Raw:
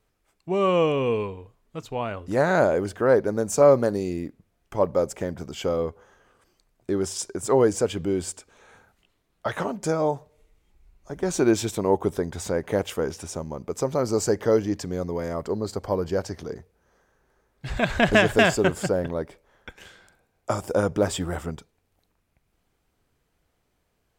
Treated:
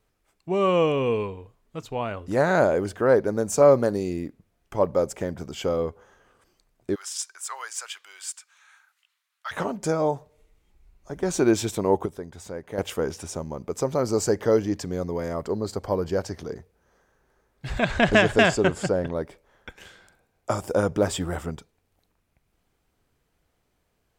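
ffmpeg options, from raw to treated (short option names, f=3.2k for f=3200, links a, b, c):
-filter_complex "[0:a]asplit=3[a][b][c];[a]afade=t=out:st=6.94:d=0.02[d];[b]highpass=f=1.2k:w=0.5412,highpass=f=1.2k:w=1.3066,afade=t=in:st=6.94:d=0.02,afade=t=out:st=9.51:d=0.02[e];[c]afade=t=in:st=9.51:d=0.02[f];[d][e][f]amix=inputs=3:normalize=0,asettb=1/sr,asplit=3[g][h][i];[g]atrim=end=17.794[j];[h]atrim=start=17.79:end=19.14,asetpts=PTS-STARTPTS,afade=t=in:d=0.004:c=qsin,afade=t=out:st=1.346:d=0.004:c=qsin,lowpass=8.7k[k];[i]atrim=start=19.136[l];[j][k]acrossfade=d=0.004:c1=hsin:c2=qsin[m];[m][l]acrossfade=d=0.004:c1=qsin:c2=hsin,asplit=3[n][o][p];[n]atrim=end=12.062[q];[o]atrim=start=12.058:end=12.782,asetpts=PTS-STARTPTS,volume=-9.5dB[r];[p]atrim=start=12.778[s];[q][r]acrossfade=d=0.004:c1=hsin:c2=hsin[t];[t][s]acrossfade=d=0.004:c1=hsin:c2=hsin"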